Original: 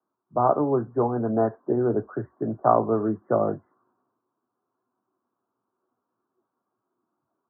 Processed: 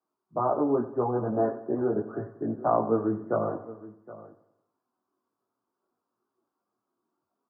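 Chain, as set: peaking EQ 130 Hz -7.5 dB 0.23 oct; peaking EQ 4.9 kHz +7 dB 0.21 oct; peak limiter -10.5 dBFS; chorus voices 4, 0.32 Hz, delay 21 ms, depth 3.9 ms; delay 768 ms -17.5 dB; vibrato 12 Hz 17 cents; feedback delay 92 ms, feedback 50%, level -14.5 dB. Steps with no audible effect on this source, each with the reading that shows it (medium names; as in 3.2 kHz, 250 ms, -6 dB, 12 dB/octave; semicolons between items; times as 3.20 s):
peaking EQ 4.9 kHz: input has nothing above 1.5 kHz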